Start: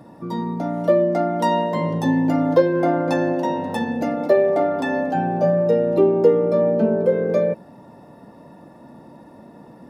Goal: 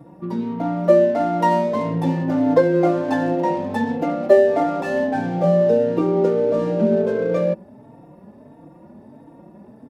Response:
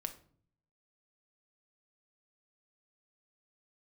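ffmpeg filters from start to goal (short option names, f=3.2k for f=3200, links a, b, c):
-filter_complex "[0:a]equalizer=f=4.4k:w=1.5:g=-3.5,asplit=2[a][b];[b]adynamicsmooth=sensitivity=5:basefreq=520,volume=2.5dB[c];[a][c]amix=inputs=2:normalize=0,asplit=2[d][e];[e]adelay=3.9,afreqshift=1.5[f];[d][f]amix=inputs=2:normalize=1,volume=-3.5dB"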